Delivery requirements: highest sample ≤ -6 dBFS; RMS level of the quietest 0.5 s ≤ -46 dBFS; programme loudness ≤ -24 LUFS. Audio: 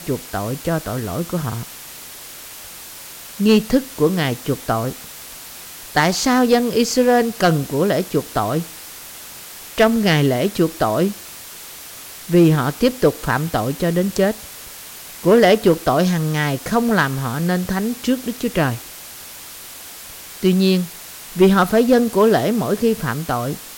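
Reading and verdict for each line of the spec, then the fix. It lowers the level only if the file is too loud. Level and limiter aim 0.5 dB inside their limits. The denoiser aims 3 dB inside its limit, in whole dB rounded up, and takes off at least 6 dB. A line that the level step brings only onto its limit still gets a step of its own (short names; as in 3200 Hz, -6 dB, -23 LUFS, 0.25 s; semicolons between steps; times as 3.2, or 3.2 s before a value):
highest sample -4.5 dBFS: fail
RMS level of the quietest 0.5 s -36 dBFS: fail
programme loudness -18.0 LUFS: fail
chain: denoiser 7 dB, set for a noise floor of -36 dBFS; gain -6.5 dB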